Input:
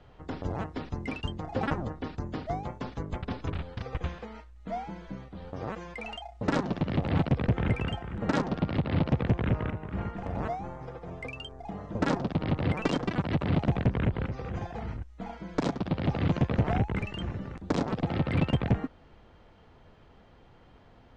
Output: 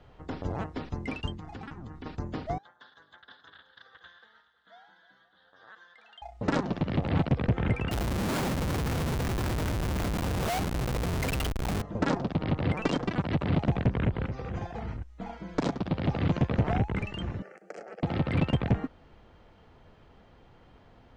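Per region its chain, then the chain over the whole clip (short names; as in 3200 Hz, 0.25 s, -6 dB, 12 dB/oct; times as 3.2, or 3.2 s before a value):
1.34–2.06 bell 570 Hz -12.5 dB 0.71 oct + compressor 12:1, threshold -37 dBFS
2.58–6.22 double band-pass 2400 Hz, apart 1.1 oct + echo with dull and thin repeats by turns 0.105 s, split 1600 Hz, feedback 79%, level -12 dB
7.91–11.82 low shelf 94 Hz +6.5 dB + Schmitt trigger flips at -40 dBFS
17.42–18.03 steep high-pass 230 Hz + compressor 3:1, threshold -37 dBFS + fixed phaser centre 1000 Hz, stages 6
whole clip: dry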